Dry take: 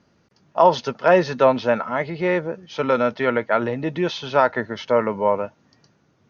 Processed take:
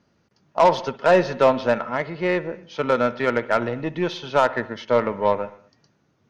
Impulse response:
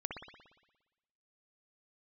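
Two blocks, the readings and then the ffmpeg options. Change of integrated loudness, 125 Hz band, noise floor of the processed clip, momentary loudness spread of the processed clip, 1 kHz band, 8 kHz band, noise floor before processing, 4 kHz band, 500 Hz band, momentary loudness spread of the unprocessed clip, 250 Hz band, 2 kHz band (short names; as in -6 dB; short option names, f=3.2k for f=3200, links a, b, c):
-1.0 dB, -1.5 dB, -66 dBFS, 9 LU, -1.0 dB, n/a, -63 dBFS, -1.0 dB, -1.0 dB, 9 LU, -1.5 dB, -0.5 dB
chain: -filter_complex "[0:a]aeval=exprs='0.708*(cos(1*acos(clip(val(0)/0.708,-1,1)))-cos(1*PI/2))+0.0178*(cos(5*acos(clip(val(0)/0.708,-1,1)))-cos(5*PI/2))+0.00891*(cos(6*acos(clip(val(0)/0.708,-1,1)))-cos(6*PI/2))+0.0562*(cos(7*acos(clip(val(0)/0.708,-1,1)))-cos(7*PI/2))':c=same,asplit=2[a][b];[1:a]atrim=start_sample=2205,afade=t=out:st=0.33:d=0.01,atrim=end_sample=14994[c];[b][c]afir=irnorm=-1:irlink=0,volume=-14dB[d];[a][d]amix=inputs=2:normalize=0,asoftclip=type=tanh:threshold=-6.5dB"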